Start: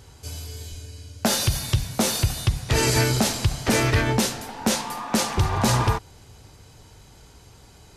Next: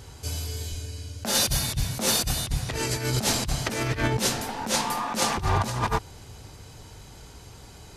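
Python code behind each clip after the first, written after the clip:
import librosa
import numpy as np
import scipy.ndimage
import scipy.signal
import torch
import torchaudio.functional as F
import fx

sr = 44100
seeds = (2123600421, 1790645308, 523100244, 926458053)

y = fx.over_compress(x, sr, threshold_db=-24.0, ratio=-0.5)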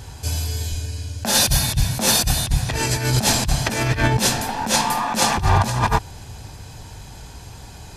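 y = x + 0.32 * np.pad(x, (int(1.2 * sr / 1000.0), 0))[:len(x)]
y = y * librosa.db_to_amplitude(6.0)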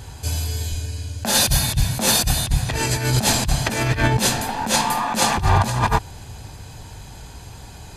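y = fx.notch(x, sr, hz=5500.0, q=9.3)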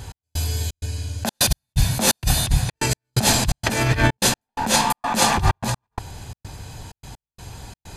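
y = fx.step_gate(x, sr, bpm=128, pattern='x..xxx.xxxx.', floor_db=-60.0, edge_ms=4.5)
y = y * librosa.db_to_amplitude(1.0)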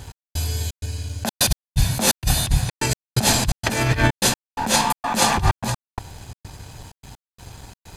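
y = np.sign(x) * np.maximum(np.abs(x) - 10.0 ** (-46.5 / 20.0), 0.0)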